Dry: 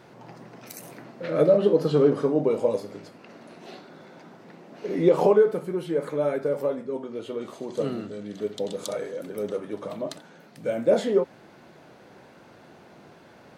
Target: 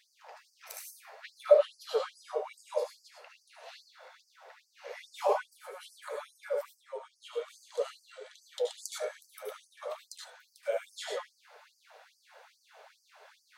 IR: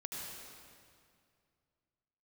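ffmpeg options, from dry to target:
-filter_complex "[0:a]flanger=delay=5.5:depth=6:regen=65:speed=0.49:shape=sinusoidal[link_01];[1:a]atrim=start_sample=2205,afade=type=out:start_time=0.17:duration=0.01,atrim=end_sample=7938[link_02];[link_01][link_02]afir=irnorm=-1:irlink=0,afftfilt=real='re*gte(b*sr/1024,420*pow(4600/420,0.5+0.5*sin(2*PI*2.4*pts/sr)))':imag='im*gte(b*sr/1024,420*pow(4600/420,0.5+0.5*sin(2*PI*2.4*pts/sr)))':win_size=1024:overlap=0.75,volume=6dB"

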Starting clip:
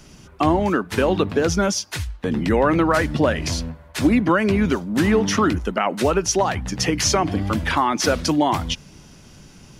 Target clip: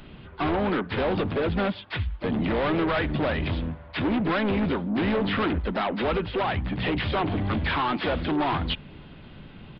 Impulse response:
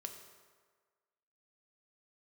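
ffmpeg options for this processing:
-filter_complex "[0:a]aresample=8000,asoftclip=type=tanh:threshold=-23.5dB,aresample=44100,asplit=3[link_01][link_02][link_03];[link_02]asetrate=55563,aresample=44100,atempo=0.793701,volume=-11dB[link_04];[link_03]asetrate=58866,aresample=44100,atempo=0.749154,volume=-16dB[link_05];[link_01][link_04][link_05]amix=inputs=3:normalize=0,volume=1dB"

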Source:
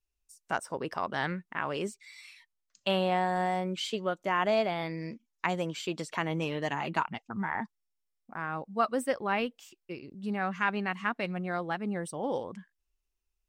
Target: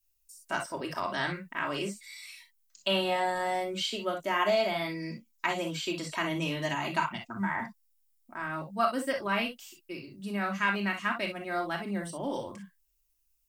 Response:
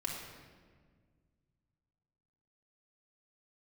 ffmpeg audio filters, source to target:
-filter_complex "[0:a]aemphasis=mode=production:type=75fm[link_01];[1:a]atrim=start_sample=2205,atrim=end_sample=3087[link_02];[link_01][link_02]afir=irnorm=-1:irlink=0,acrossover=split=5400[link_03][link_04];[link_04]acompressor=threshold=-50dB:ratio=4:attack=1:release=60[link_05];[link_03][link_05]amix=inputs=2:normalize=0"

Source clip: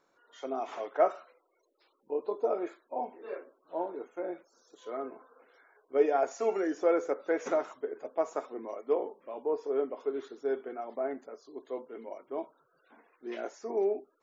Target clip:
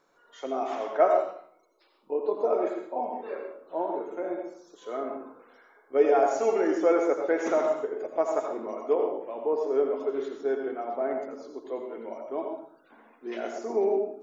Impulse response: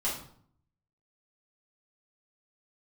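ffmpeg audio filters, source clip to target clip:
-filter_complex "[0:a]asplit=2[link_01][link_02];[1:a]atrim=start_sample=2205,adelay=80[link_03];[link_02][link_03]afir=irnorm=-1:irlink=0,volume=-9.5dB[link_04];[link_01][link_04]amix=inputs=2:normalize=0,volume=3.5dB"

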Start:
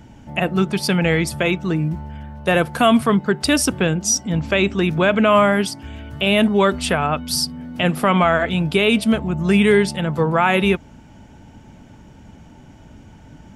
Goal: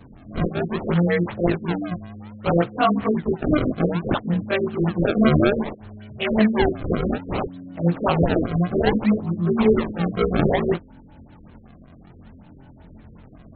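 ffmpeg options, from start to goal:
ffmpeg -i in.wav -af "afftfilt=real='re':imag='-im':win_size=2048:overlap=0.75,acrusher=samples=28:mix=1:aa=0.000001:lfo=1:lforange=44.8:lforate=0.61,afftfilt=real='re*lt(b*sr/1024,520*pow(4400/520,0.5+0.5*sin(2*PI*5.3*pts/sr)))':imag='im*lt(b*sr/1024,520*pow(4400/520,0.5+0.5*sin(2*PI*5.3*pts/sr)))':win_size=1024:overlap=0.75,volume=2dB" out.wav

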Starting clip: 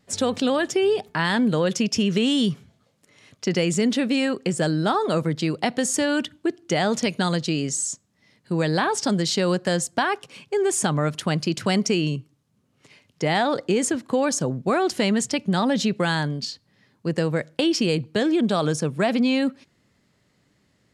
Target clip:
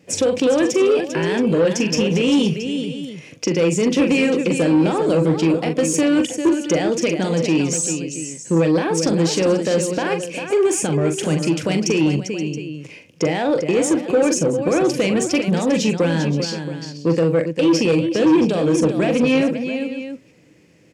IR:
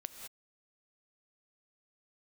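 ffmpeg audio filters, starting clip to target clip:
-filter_complex "[0:a]asplit=2[link_01][link_02];[link_02]acompressor=threshold=-34dB:ratio=6,volume=-0.5dB[link_03];[link_01][link_03]amix=inputs=2:normalize=0,alimiter=limit=-13dB:level=0:latency=1:release=247,equalizer=frequency=160:width_type=o:width=0.33:gain=7,equalizer=frequency=315:width_type=o:width=0.33:gain=12,equalizer=frequency=500:width_type=o:width=0.33:gain=12,equalizer=frequency=1250:width_type=o:width=0.33:gain=-5,equalizer=frequency=2500:width_type=o:width=0.33:gain=11,equalizer=frequency=4000:width_type=o:width=0.33:gain=-6,asplit=2[link_04][link_05];[link_05]aecho=0:1:42|397|525|674:0.398|0.355|0.158|0.168[link_06];[link_04][link_06]amix=inputs=2:normalize=0,asoftclip=type=tanh:threshold=-9.5dB,highpass=55,equalizer=frequency=5900:width_type=o:width=0.48:gain=4.5"

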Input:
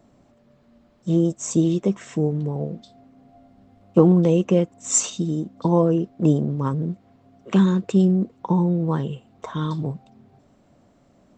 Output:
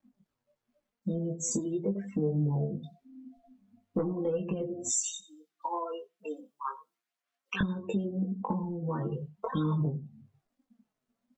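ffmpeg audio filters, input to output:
ffmpeg -i in.wav -filter_complex "[0:a]acrusher=bits=8:mix=0:aa=0.000001,aecho=1:1:91|182|273:0.266|0.0798|0.0239,flanger=delay=3.7:depth=5.2:regen=5:speed=0.94:shape=sinusoidal,asettb=1/sr,asplit=3[link_01][link_02][link_03];[link_01]atrim=end=4.894[link_04];[link_02]atrim=start=4.89:end=7.61,asetpts=PTS-STARTPTS,afade=type=in:duration=0.004:curve=qsin,afade=type=out:start_time=2.716:duration=0.004:curve=qsin,highpass=1300[link_05];[link_03]atrim=start=7.606[link_06];[link_04][link_05]acrossfade=duration=0.004:curve1=hsin:curve2=qsin[link_07];[link_07][link_06]acrossfade=duration=0.004:curve1=qsin:curve2=hsin,aphaser=in_gain=1:out_gain=1:delay=4.7:decay=0.36:speed=0.41:type=sinusoidal,asoftclip=type=tanh:threshold=-8.5dB,afftdn=noise_reduction=33:noise_floor=-36,acompressor=threshold=-34dB:ratio=10,asplit=2[link_08][link_09];[link_09]adelay=20,volume=-5dB[link_10];[link_08][link_10]amix=inputs=2:normalize=0,volume=5dB" out.wav

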